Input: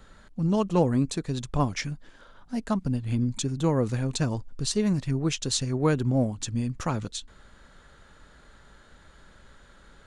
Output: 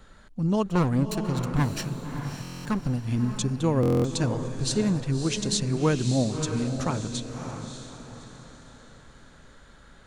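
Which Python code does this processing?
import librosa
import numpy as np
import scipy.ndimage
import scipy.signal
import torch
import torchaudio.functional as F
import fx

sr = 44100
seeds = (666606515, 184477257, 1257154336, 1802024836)

y = fx.lower_of_two(x, sr, delay_ms=0.71, at=(0.66, 2.99))
y = fx.echo_diffused(y, sr, ms=609, feedback_pct=41, wet_db=-7)
y = fx.buffer_glitch(y, sr, at_s=(2.42, 3.81), block=1024, repeats=9)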